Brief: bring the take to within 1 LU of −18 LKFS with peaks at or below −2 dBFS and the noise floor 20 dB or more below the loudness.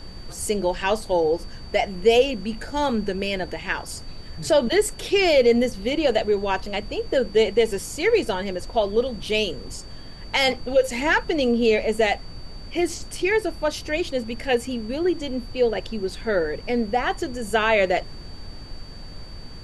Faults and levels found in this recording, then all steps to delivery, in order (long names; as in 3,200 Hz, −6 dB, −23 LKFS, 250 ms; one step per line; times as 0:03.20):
interfering tone 4,600 Hz; level of the tone −45 dBFS; background noise floor −38 dBFS; target noise floor −43 dBFS; integrated loudness −23.0 LKFS; sample peak −5.5 dBFS; target loudness −18.0 LKFS
→ notch filter 4,600 Hz, Q 30
noise reduction from a noise print 6 dB
level +5 dB
brickwall limiter −2 dBFS